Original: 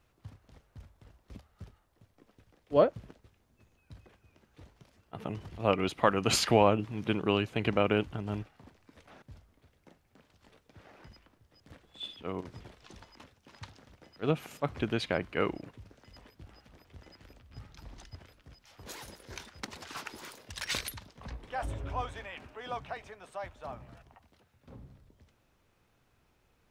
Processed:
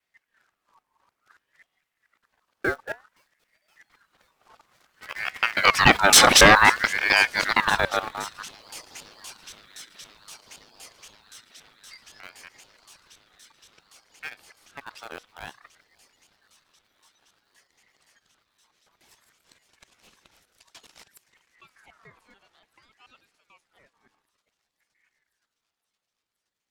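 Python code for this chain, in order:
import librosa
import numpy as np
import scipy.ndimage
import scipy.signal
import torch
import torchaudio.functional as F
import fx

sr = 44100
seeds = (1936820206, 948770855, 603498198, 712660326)

p1 = fx.local_reverse(x, sr, ms=142.0)
p2 = fx.doppler_pass(p1, sr, speed_mps=7, closest_m=3.5, pass_at_s=6.35)
p3 = fx.highpass(p2, sr, hz=97.0, slope=6)
p4 = fx.high_shelf(p3, sr, hz=3000.0, db=5.0)
p5 = fx.quant_dither(p4, sr, seeds[0], bits=8, dither='none')
p6 = p4 + F.gain(torch.from_numpy(p5), -7.0).numpy()
p7 = fx.fold_sine(p6, sr, drive_db=8, ceiling_db=-5.5)
p8 = fx.comb_fb(p7, sr, f0_hz=250.0, decay_s=0.27, harmonics='all', damping=0.0, mix_pct=40)
p9 = fx.echo_wet_highpass(p8, sr, ms=519, feedback_pct=85, hz=2300.0, wet_db=-21.5)
p10 = fx.ring_lfo(p9, sr, carrier_hz=1500.0, swing_pct=35, hz=0.56)
y = F.gain(torch.from_numpy(p10), 6.5).numpy()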